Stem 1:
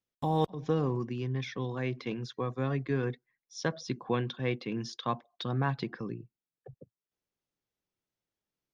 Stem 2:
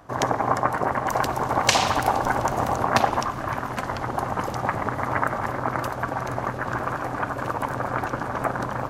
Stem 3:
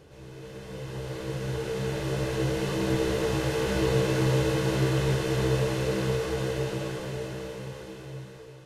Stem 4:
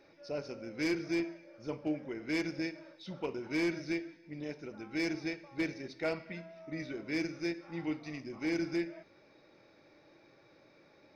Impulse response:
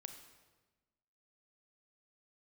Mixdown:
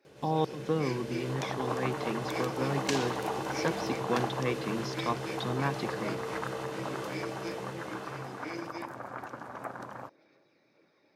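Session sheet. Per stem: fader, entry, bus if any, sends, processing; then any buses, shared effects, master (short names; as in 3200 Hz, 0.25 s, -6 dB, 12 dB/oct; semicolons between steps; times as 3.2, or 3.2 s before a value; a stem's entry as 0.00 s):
0.0 dB, 0.00 s, no send, dry
-14.0 dB, 1.20 s, no send, dry
-1.0 dB, 0.05 s, no send, compressor 4:1, threshold -32 dBFS, peak gain reduction 10.5 dB; soft clip -26 dBFS, distortion -22 dB
-6.0 dB, 0.00 s, no send, chorus voices 4, 1.1 Hz, delay 27 ms, depth 3 ms; harmonic-percussive split percussive +7 dB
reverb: off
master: HPF 150 Hz 12 dB/oct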